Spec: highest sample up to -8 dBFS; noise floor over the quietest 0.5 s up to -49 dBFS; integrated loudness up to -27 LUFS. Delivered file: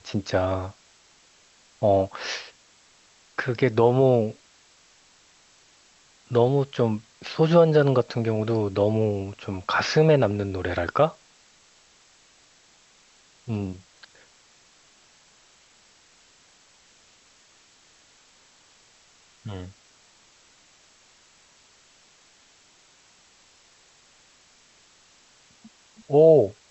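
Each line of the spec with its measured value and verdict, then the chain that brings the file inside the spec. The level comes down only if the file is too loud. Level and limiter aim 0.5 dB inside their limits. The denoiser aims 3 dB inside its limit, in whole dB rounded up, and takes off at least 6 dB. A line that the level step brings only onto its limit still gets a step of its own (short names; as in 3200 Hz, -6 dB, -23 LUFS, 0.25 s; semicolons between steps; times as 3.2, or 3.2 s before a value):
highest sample -6.0 dBFS: fail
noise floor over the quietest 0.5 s -58 dBFS: OK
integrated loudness -22.5 LUFS: fail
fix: gain -5 dB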